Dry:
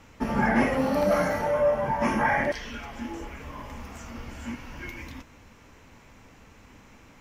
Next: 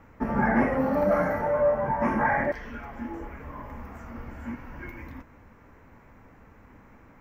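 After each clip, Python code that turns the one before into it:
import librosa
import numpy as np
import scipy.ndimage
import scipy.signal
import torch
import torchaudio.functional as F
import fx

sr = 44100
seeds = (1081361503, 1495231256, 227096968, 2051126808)

y = fx.band_shelf(x, sr, hz=5700.0, db=-16.0, octaves=2.5)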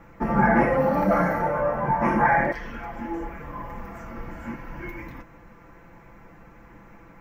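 y = x + 0.65 * np.pad(x, (int(5.9 * sr / 1000.0), 0))[:len(x)]
y = y * librosa.db_to_amplitude(3.0)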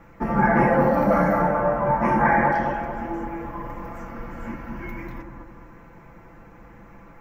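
y = fx.echo_bbd(x, sr, ms=216, stages=2048, feedback_pct=47, wet_db=-3)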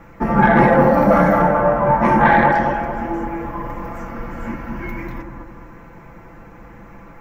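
y = fx.tracing_dist(x, sr, depth_ms=0.028)
y = y * librosa.db_to_amplitude(6.0)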